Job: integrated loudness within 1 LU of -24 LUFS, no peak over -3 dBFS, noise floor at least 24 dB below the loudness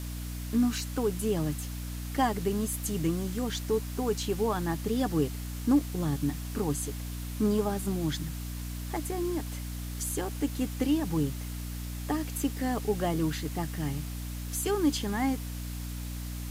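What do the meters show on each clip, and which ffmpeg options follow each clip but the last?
hum 60 Hz; highest harmonic 300 Hz; hum level -34 dBFS; noise floor -37 dBFS; noise floor target -55 dBFS; loudness -31.0 LUFS; peak level -14.5 dBFS; loudness target -24.0 LUFS
-> -af "bandreject=f=60:t=h:w=4,bandreject=f=120:t=h:w=4,bandreject=f=180:t=h:w=4,bandreject=f=240:t=h:w=4,bandreject=f=300:t=h:w=4"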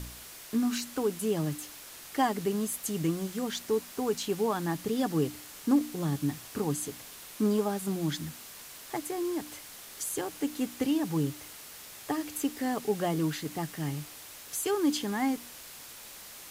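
hum not found; noise floor -47 dBFS; noise floor target -56 dBFS
-> -af "afftdn=nr=9:nf=-47"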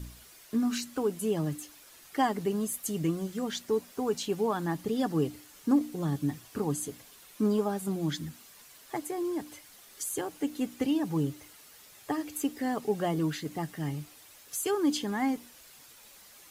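noise floor -54 dBFS; noise floor target -56 dBFS
-> -af "afftdn=nr=6:nf=-54"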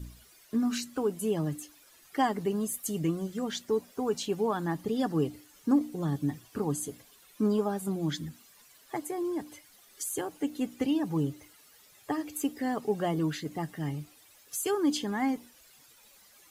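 noise floor -59 dBFS; loudness -31.5 LUFS; peak level -15.0 dBFS; loudness target -24.0 LUFS
-> -af "volume=2.37"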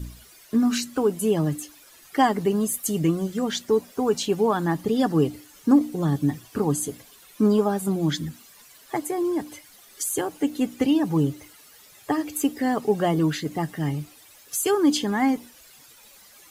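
loudness -24.0 LUFS; peak level -7.5 dBFS; noise floor -51 dBFS

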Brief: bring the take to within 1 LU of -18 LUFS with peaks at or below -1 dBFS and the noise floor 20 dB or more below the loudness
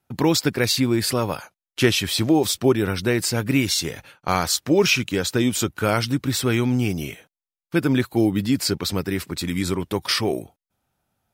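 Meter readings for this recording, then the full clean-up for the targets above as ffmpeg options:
loudness -21.5 LUFS; peak level -6.0 dBFS; loudness target -18.0 LUFS
-> -af "volume=1.5"

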